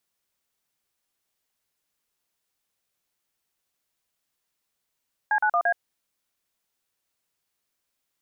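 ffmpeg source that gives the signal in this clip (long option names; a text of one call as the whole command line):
ffmpeg -f lavfi -i "aevalsrc='0.0841*clip(min(mod(t,0.114),0.073-mod(t,0.114))/0.002,0,1)*(eq(floor(t/0.114),0)*(sin(2*PI*852*mod(t,0.114))+sin(2*PI*1633*mod(t,0.114)))+eq(floor(t/0.114),1)*(sin(2*PI*852*mod(t,0.114))+sin(2*PI*1477*mod(t,0.114)))+eq(floor(t/0.114),2)*(sin(2*PI*697*mod(t,0.114))+sin(2*PI*1209*mod(t,0.114)))+eq(floor(t/0.114),3)*(sin(2*PI*697*mod(t,0.114))+sin(2*PI*1633*mod(t,0.114))))':duration=0.456:sample_rate=44100" out.wav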